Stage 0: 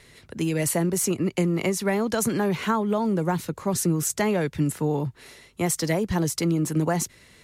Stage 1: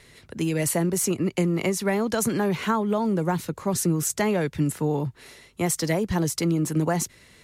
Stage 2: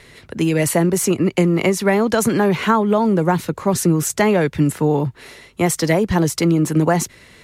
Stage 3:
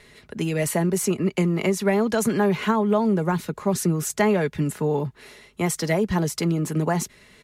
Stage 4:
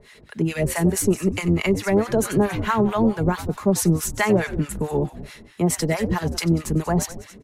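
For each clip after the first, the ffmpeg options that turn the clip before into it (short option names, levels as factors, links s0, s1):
-af anull
-af "bass=f=250:g=-2,treble=f=4000:g=-5,volume=2.66"
-af "aecho=1:1:4.8:0.37,volume=0.473"
-filter_complex "[0:a]asplit=7[s0][s1][s2][s3][s4][s5][s6];[s1]adelay=94,afreqshift=-92,volume=0.282[s7];[s2]adelay=188,afreqshift=-184,volume=0.151[s8];[s3]adelay=282,afreqshift=-276,volume=0.0822[s9];[s4]adelay=376,afreqshift=-368,volume=0.0442[s10];[s5]adelay=470,afreqshift=-460,volume=0.024[s11];[s6]adelay=564,afreqshift=-552,volume=0.0129[s12];[s0][s7][s8][s9][s10][s11][s12]amix=inputs=7:normalize=0,acrossover=split=780[s13][s14];[s13]aeval=exprs='val(0)*(1-1/2+1/2*cos(2*PI*4.6*n/s))':c=same[s15];[s14]aeval=exprs='val(0)*(1-1/2-1/2*cos(2*PI*4.6*n/s))':c=same[s16];[s15][s16]amix=inputs=2:normalize=0,acontrast=83,volume=0.841"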